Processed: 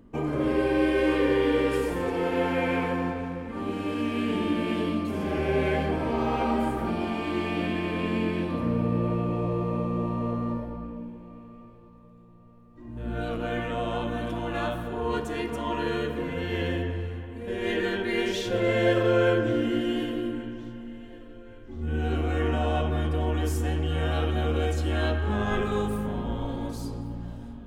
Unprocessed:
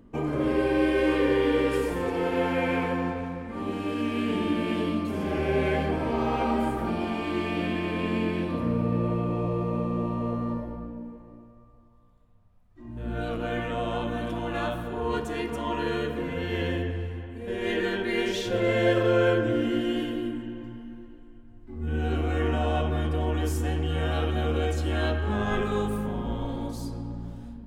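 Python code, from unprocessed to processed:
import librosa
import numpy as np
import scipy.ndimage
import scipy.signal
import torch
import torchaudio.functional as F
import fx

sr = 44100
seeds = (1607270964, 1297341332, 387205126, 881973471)

y = fx.echo_feedback(x, sr, ms=1125, feedback_pct=48, wet_db=-22.5)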